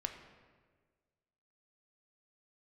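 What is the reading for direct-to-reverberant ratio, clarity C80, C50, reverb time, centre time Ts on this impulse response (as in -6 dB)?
4.5 dB, 9.0 dB, 7.5 dB, 1.5 s, 25 ms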